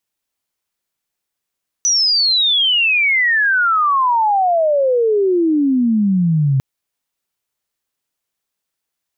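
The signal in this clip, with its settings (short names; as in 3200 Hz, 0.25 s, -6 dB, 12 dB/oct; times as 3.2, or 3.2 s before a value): chirp logarithmic 6000 Hz -> 130 Hz -11.5 dBFS -> -11.5 dBFS 4.75 s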